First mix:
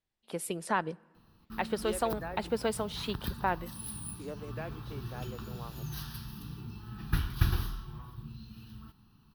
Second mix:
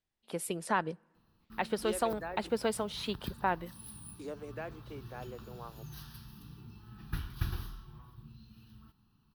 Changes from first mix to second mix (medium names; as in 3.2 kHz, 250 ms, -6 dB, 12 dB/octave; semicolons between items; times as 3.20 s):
first voice: send -6.5 dB; background -7.5 dB